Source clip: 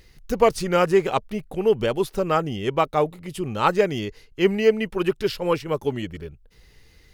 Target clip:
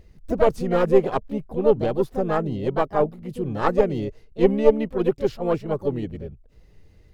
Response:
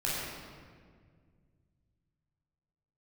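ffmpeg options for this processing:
-filter_complex "[0:a]aeval=exprs='0.668*(cos(1*acos(clip(val(0)/0.668,-1,1)))-cos(1*PI/2))+0.299*(cos(2*acos(clip(val(0)/0.668,-1,1)))-cos(2*PI/2))+0.0133*(cos(4*acos(clip(val(0)/0.668,-1,1)))-cos(4*PI/2))+0.00422*(cos(5*acos(clip(val(0)/0.668,-1,1)))-cos(5*PI/2))+0.0168*(cos(7*acos(clip(val(0)/0.668,-1,1)))-cos(7*PI/2))':c=same,asplit=2[a][b];[b]asetrate=58866,aresample=44100,atempo=0.749154,volume=-6dB[c];[a][c]amix=inputs=2:normalize=0,tiltshelf=f=1.1k:g=8,volume=-5dB"

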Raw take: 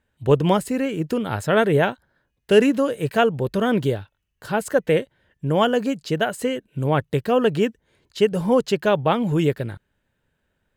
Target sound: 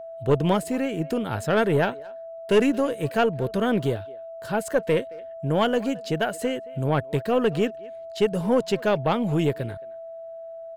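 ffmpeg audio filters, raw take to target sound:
-filter_complex "[0:a]asplit=2[a][b];[b]adelay=220,highpass=300,lowpass=3.4k,asoftclip=type=hard:threshold=-14dB,volume=-21dB[c];[a][c]amix=inputs=2:normalize=0,aeval=exprs='val(0)+0.0224*sin(2*PI*660*n/s)':c=same,aeval=exprs='(tanh(2.51*val(0)+0.25)-tanh(0.25))/2.51':c=same,volume=-2dB"

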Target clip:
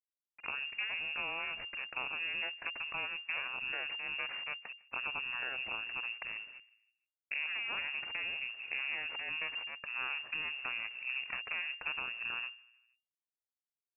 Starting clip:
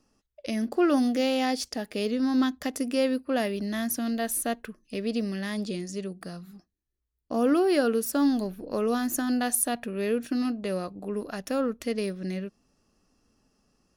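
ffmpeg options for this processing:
-filter_complex "[0:a]agate=range=-14dB:threshold=-59dB:ratio=16:detection=peak,equalizer=f=400:t=o:w=2.7:g=-10.5,acompressor=threshold=-39dB:ratio=16,aeval=exprs='0.0841*(cos(1*acos(clip(val(0)/0.0841,-1,1)))-cos(1*PI/2))+0.00119*(cos(4*acos(clip(val(0)/0.0841,-1,1)))-cos(4*PI/2))+0.00075*(cos(6*acos(clip(val(0)/0.0841,-1,1)))-cos(6*PI/2))+0.0237*(cos(8*acos(clip(val(0)/0.0841,-1,1)))-cos(8*PI/2))':c=same,asetrate=27781,aresample=44100,atempo=1.5874,acrusher=bits=8:mix=0:aa=0.000001,asplit=2[a][b];[b]adelay=155,lowpass=f=1.6k:p=1,volume=-23dB,asplit=2[c][d];[d]adelay=155,lowpass=f=1.6k:p=1,volume=0.52,asplit=2[e][f];[f]adelay=155,lowpass=f=1.6k:p=1,volume=0.52[g];[c][e][g]amix=inputs=3:normalize=0[h];[a][h]amix=inputs=2:normalize=0,lowpass=f=2.4k:t=q:w=0.5098,lowpass=f=2.4k:t=q:w=0.6013,lowpass=f=2.4k:t=q:w=0.9,lowpass=f=2.4k:t=q:w=2.563,afreqshift=-2800"

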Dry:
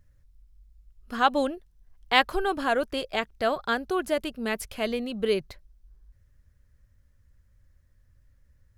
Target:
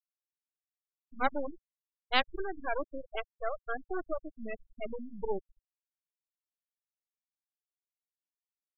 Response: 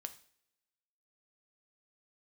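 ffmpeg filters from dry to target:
-af "aeval=exprs='max(val(0),0)':c=same,afftfilt=real='re*gte(hypot(re,im),0.0891)':imag='im*gte(hypot(re,im),0.0891)':win_size=1024:overlap=0.75,volume=-3.5dB"

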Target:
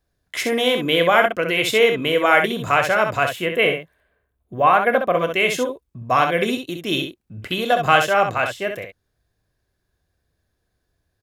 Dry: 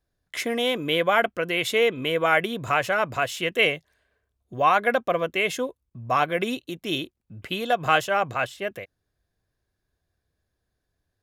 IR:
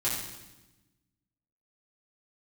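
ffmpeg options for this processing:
-filter_complex "[0:a]asettb=1/sr,asplit=3[a][b][c];[a]atrim=end=3.294[d];[b]atrim=start=3.29:end=5.15,asetpts=PTS-STARTPTS,afade=t=in:d=0.004:c=qsin,afade=t=out:st=1.856:d=0.004:c=qsin,equalizer=f=5.6k:t=o:w=1.3:g=-14[e];[c]atrim=start=5.146[f];[d][e]acrossfade=d=0.004:c1=hsin:c2=qsin[g];[g][f]acrossfade=d=0.004:c1=qsin:c2=hsin,asplit=2[h][i];[i]aecho=0:1:28|65:0.224|0.473[j];[h][j]amix=inputs=2:normalize=0,volume=4.5dB"

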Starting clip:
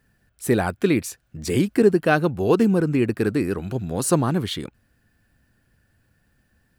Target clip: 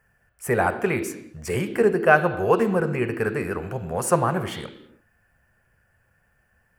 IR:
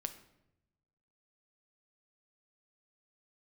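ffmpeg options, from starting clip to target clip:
-filter_complex "[0:a]asplit=2[a][b];[b]acrossover=split=310 3700:gain=0.141 1 0.141[c][d][e];[c][d][e]amix=inputs=3:normalize=0[f];[1:a]atrim=start_sample=2205,afade=t=out:st=0.26:d=0.01,atrim=end_sample=11907,asetrate=26460,aresample=44100[g];[f][g]afir=irnorm=-1:irlink=0,volume=4.5dB[h];[a][h]amix=inputs=2:normalize=0,volume=-4.5dB"

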